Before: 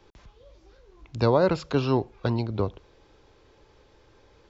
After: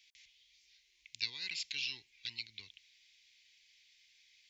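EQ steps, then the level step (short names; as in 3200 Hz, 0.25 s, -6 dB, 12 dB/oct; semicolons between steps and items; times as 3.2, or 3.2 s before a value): elliptic high-pass 2100 Hz, stop band 40 dB; +2.5 dB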